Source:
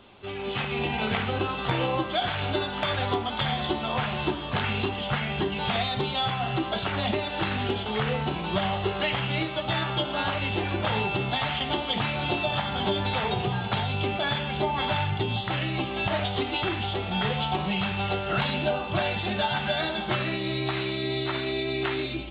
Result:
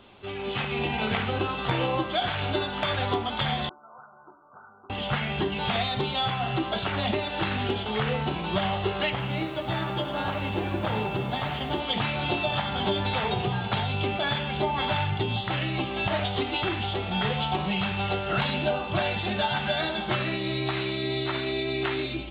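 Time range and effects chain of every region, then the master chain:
3.69–4.9 Chebyshev low-pass 1500 Hz, order 10 + differentiator
9.1–11.8 bell 3400 Hz -6 dB 2.7 oct + lo-fi delay 97 ms, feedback 80%, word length 9-bit, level -12 dB
whole clip: dry

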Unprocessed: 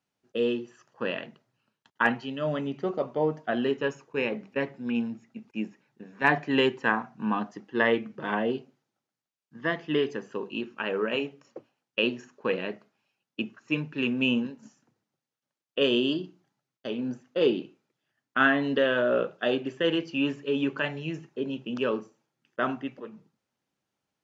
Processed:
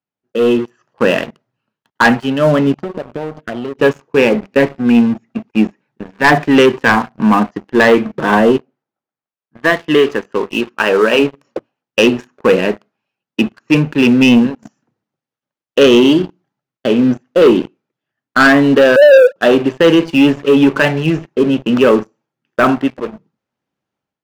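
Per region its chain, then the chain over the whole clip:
2.74–3.79 envelope phaser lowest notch 310 Hz, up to 2900 Hz, full sweep at -21.5 dBFS + compressor 12:1, threshold -38 dBFS
8.57–11.19 low shelf 290 Hz -9.5 dB + mismatched tape noise reduction decoder only
18.96–19.36 sine-wave speech + LPF 1300 Hz 24 dB/oct + bell 510 Hz +7.5 dB 2.1 oct
whole clip: high shelf 4200 Hz -12 dB; sample leveller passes 3; AGC gain up to 11.5 dB

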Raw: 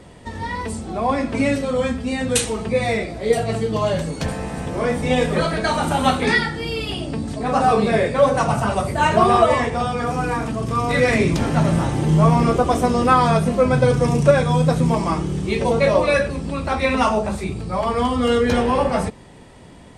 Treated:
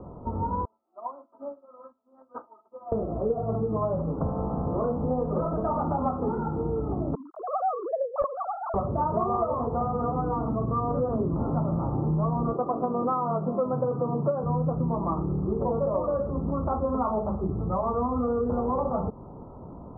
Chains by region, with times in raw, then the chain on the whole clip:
0.65–2.92 HPF 790 Hz + comb 3.2 ms, depth 74% + upward expander 2.5:1, over -39 dBFS
7.15–8.74 sine-wave speech + HPF 950 Hz 6 dB/oct + wrapped overs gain 7 dB
12.53–14.44 HPF 120 Hz 24 dB/oct + low shelf 160 Hz -7.5 dB
whole clip: steep low-pass 1300 Hz 96 dB/oct; compressor 5:1, threshold -26 dBFS; gain +1.5 dB

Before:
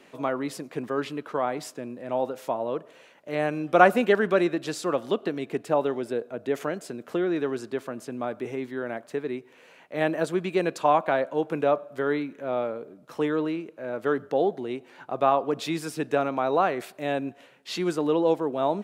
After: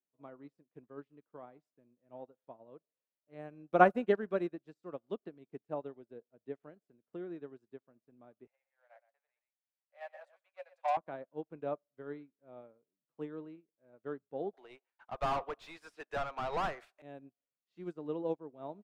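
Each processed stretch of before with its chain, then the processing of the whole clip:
8.47–10.97 sample leveller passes 2 + rippled Chebyshev high-pass 530 Hz, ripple 6 dB + echo 0.12 s -6 dB
14.53–17.02 gate with hold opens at -39 dBFS, closes at -45 dBFS + HPF 800 Hz + overdrive pedal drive 27 dB, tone 4800 Hz, clips at -11.5 dBFS
whole clip: tilt -2.5 dB/oct; upward expander 2.5:1, over -40 dBFS; gain -6 dB

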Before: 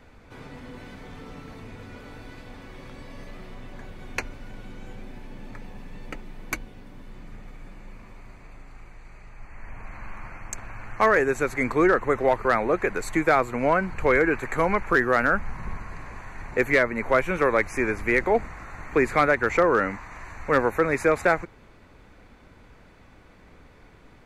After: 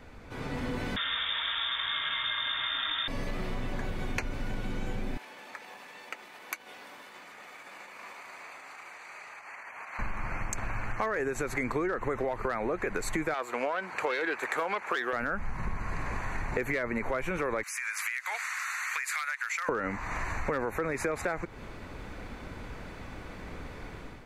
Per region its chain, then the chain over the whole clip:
0.96–3.08 band shelf 2000 Hz +10.5 dB 1 oct + echo 0.163 s -5 dB + inverted band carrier 3600 Hz
5.17–9.99 compressor, threshold -39 dBFS + HPF 780 Hz
13.34–15.13 self-modulated delay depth 0.078 ms + HPF 480 Hz
17.63–19.69 HPF 1300 Hz 24 dB/oct + high shelf 3900 Hz +11.5 dB + compressor 10:1, threshold -36 dBFS
whole clip: AGC gain up to 8 dB; limiter -11.5 dBFS; compressor 6:1, threshold -30 dBFS; gain +1.5 dB

